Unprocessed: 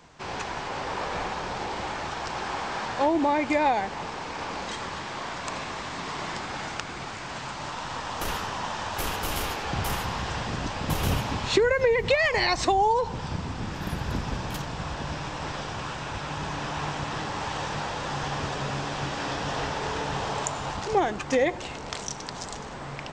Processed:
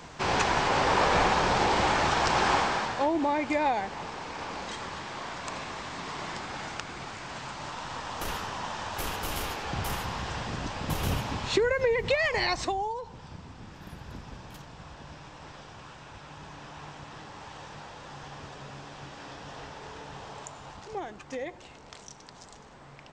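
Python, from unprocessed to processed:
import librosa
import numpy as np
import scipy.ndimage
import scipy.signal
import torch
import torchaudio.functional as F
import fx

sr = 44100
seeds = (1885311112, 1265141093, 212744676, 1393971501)

y = fx.gain(x, sr, db=fx.line((2.54, 7.5), (3.05, -3.5), (12.5, -3.5), (13.01, -13.0)))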